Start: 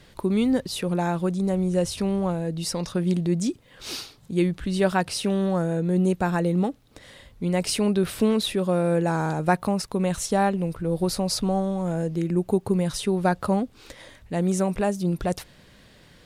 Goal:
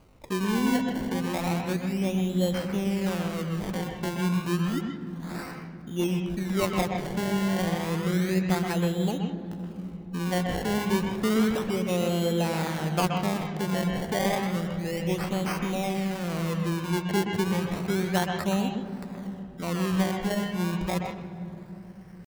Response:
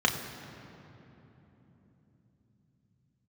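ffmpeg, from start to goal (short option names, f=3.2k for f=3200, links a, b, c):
-filter_complex "[0:a]acrusher=samples=24:mix=1:aa=0.000001:lfo=1:lforange=24:lforate=0.42,aeval=exprs='val(0)+0.00158*(sin(2*PI*50*n/s)+sin(2*PI*2*50*n/s)/2+sin(2*PI*3*50*n/s)/3+sin(2*PI*4*50*n/s)/4+sin(2*PI*5*50*n/s)/5)':c=same,atempo=0.73,asplit=2[a][b];[1:a]atrim=start_sample=2205,lowpass=4.7k,adelay=125[c];[b][c]afir=irnorm=-1:irlink=0,volume=-16dB[d];[a][d]amix=inputs=2:normalize=0,volume=-5.5dB"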